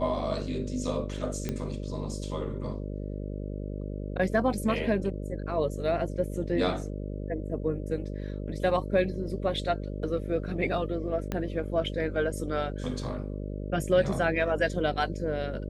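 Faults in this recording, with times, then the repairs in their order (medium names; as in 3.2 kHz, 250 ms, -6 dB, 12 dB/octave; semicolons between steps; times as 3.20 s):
buzz 50 Hz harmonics 12 -35 dBFS
1.49 s: pop -17 dBFS
11.32 s: pop -17 dBFS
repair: de-click; de-hum 50 Hz, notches 12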